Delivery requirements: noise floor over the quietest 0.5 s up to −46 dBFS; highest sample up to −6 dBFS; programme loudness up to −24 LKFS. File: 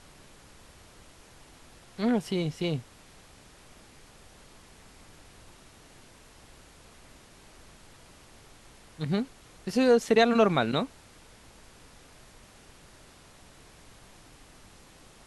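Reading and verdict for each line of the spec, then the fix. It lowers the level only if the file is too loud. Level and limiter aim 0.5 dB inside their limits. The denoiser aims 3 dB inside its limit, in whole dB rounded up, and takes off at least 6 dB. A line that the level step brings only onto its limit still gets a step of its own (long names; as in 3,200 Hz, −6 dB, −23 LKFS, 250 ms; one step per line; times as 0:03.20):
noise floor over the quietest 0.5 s −54 dBFS: in spec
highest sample −9.5 dBFS: in spec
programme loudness −26.5 LKFS: in spec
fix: no processing needed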